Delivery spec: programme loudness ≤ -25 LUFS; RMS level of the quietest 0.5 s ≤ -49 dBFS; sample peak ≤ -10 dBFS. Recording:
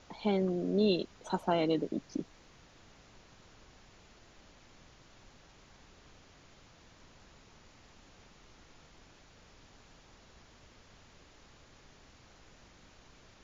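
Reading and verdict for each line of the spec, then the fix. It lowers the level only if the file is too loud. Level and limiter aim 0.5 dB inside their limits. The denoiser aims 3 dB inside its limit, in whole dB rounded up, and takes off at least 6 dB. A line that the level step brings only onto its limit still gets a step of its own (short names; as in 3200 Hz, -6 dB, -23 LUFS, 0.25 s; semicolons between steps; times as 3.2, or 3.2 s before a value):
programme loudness -32.5 LUFS: OK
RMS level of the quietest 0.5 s -59 dBFS: OK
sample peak -17.0 dBFS: OK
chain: none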